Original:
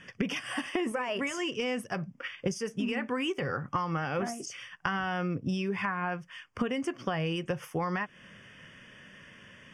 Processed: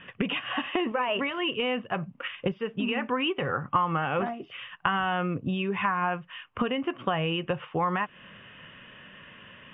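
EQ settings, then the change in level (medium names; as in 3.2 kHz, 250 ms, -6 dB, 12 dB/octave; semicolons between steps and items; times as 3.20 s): rippled Chebyshev low-pass 3.9 kHz, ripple 6 dB; +7.5 dB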